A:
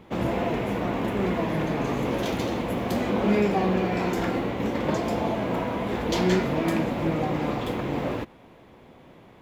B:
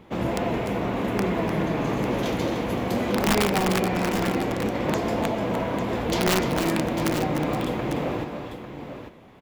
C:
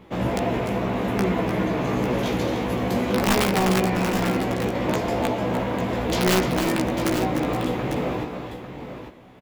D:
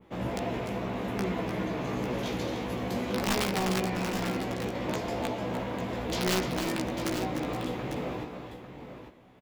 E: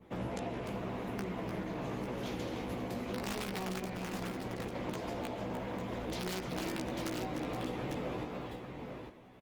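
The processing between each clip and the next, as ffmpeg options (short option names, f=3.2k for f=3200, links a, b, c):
-filter_complex "[0:a]aeval=exprs='(mod(5.31*val(0)+1,2)-1)/5.31':c=same,asplit=2[a][b];[b]aecho=0:1:288|300|848:0.119|0.355|0.335[c];[a][c]amix=inputs=2:normalize=0"
-filter_complex "[0:a]asplit=2[a][b];[b]adelay=16,volume=-4dB[c];[a][c]amix=inputs=2:normalize=0"
-af "adynamicequalizer=threshold=0.0112:dfrequency=4800:dqfactor=0.8:tfrequency=4800:tqfactor=0.8:attack=5:release=100:ratio=0.375:range=2:mode=boostabove:tftype=bell,volume=-8.5dB"
-af "acompressor=threshold=-34dB:ratio=6" -ar 48000 -c:a libopus -b:a 20k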